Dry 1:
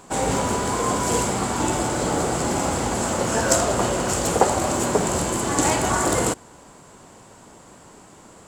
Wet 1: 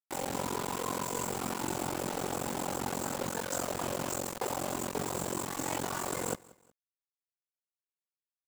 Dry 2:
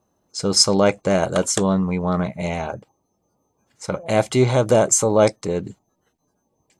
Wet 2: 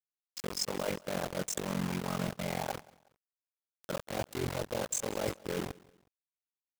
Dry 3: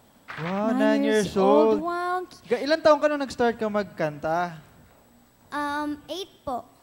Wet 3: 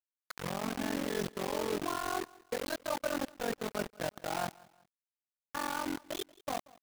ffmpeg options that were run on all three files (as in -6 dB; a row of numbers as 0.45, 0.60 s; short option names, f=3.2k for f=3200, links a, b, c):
-filter_complex "[0:a]bandreject=f=50:t=h:w=6,bandreject=f=100:t=h:w=6,bandreject=f=150:t=h:w=6,bandreject=f=200:t=h:w=6,bandreject=f=250:t=h:w=6,bandreject=f=300:t=h:w=6,bandreject=f=350:t=h:w=6,bandreject=f=400:t=h:w=6,bandreject=f=450:t=h:w=6,bandreject=f=500:t=h:w=6,afftdn=nr=21:nf=-30,highpass=f=110:w=0.5412,highpass=f=110:w=1.3066,bandreject=f=660:w=14,areverse,acompressor=threshold=-27dB:ratio=16,areverse,tremolo=f=45:d=0.824,acrusher=bits=5:mix=0:aa=0.000001,asplit=2[a][b];[b]aecho=0:1:183|366:0.0708|0.0262[c];[a][c]amix=inputs=2:normalize=0,volume=-1dB"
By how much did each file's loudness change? -13.0, -17.0, -12.5 LU